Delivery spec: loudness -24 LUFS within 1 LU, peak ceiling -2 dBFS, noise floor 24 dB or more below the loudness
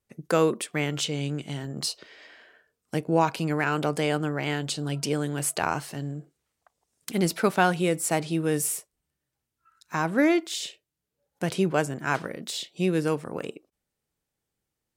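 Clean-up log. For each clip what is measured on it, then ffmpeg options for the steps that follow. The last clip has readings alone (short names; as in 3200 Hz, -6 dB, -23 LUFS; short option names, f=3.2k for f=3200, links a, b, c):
loudness -27.0 LUFS; peak -7.5 dBFS; loudness target -24.0 LUFS
-> -af "volume=3dB"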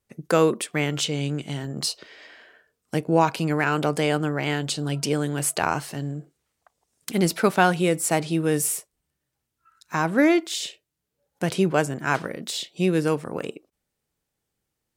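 loudness -24.0 LUFS; peak -4.5 dBFS; noise floor -81 dBFS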